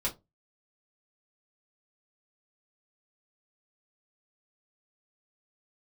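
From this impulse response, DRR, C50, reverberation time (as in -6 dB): -5.0 dB, 17.5 dB, 0.20 s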